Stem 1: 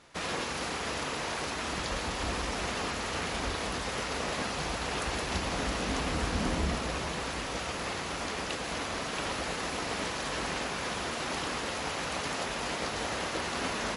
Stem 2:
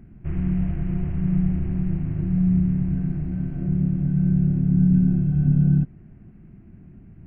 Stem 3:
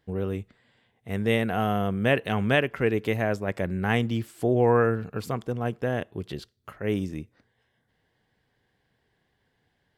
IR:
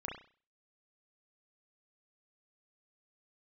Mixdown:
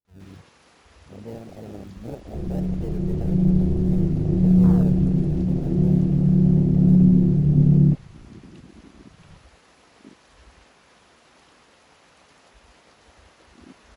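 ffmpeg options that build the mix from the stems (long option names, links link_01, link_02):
-filter_complex "[0:a]aeval=exprs='val(0)+0.00112*(sin(2*PI*60*n/s)+sin(2*PI*2*60*n/s)/2+sin(2*PI*3*60*n/s)/3+sin(2*PI*4*60*n/s)/4+sin(2*PI*5*60*n/s)/5)':channel_layout=same,adelay=50,volume=-4.5dB[link_01];[1:a]dynaudnorm=framelen=160:gausssize=13:maxgain=10dB,lowpass=frequency=410:width_type=q:width=4,adelay=2100,volume=-5.5dB[link_02];[2:a]acrusher=samples=32:mix=1:aa=0.000001:lfo=1:lforange=32:lforate=0.64,adynamicequalizer=threshold=0.00891:dfrequency=5700:dqfactor=0.7:tfrequency=5700:tqfactor=0.7:attack=5:release=100:ratio=0.375:range=2:mode=boostabove:tftype=highshelf,volume=-12.5dB[link_03];[link_01][link_02][link_03]amix=inputs=3:normalize=0,afwtdn=0.0355"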